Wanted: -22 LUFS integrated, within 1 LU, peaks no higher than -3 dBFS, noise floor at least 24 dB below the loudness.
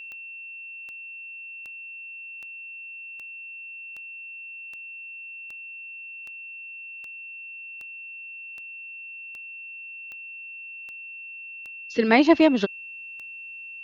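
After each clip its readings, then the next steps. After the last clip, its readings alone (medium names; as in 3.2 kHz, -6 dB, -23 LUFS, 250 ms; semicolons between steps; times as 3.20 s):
clicks found 18; steady tone 2.7 kHz; tone level -37 dBFS; loudness -30.0 LUFS; peak level -3.0 dBFS; loudness target -22.0 LUFS
-> de-click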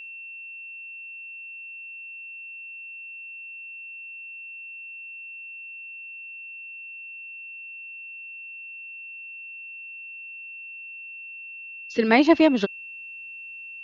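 clicks found 0; steady tone 2.7 kHz; tone level -37 dBFS
-> band-stop 2.7 kHz, Q 30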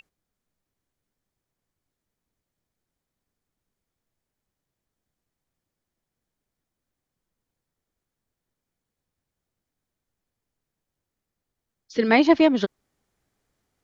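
steady tone not found; loudness -19.5 LUFS; peak level -3.0 dBFS; loudness target -22.0 LUFS
-> trim -2.5 dB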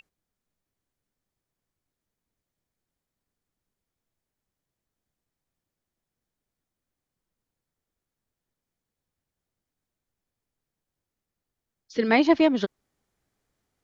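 loudness -22.0 LUFS; peak level -5.5 dBFS; noise floor -88 dBFS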